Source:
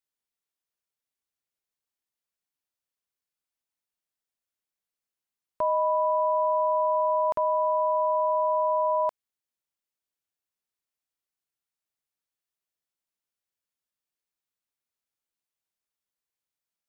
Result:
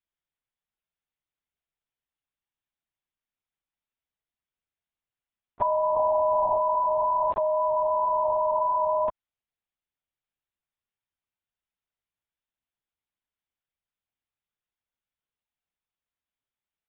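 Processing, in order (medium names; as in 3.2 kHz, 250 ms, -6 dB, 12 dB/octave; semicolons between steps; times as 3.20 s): 5.96–6.57 s: comb 3.4 ms, depth 48%; LPC vocoder at 8 kHz whisper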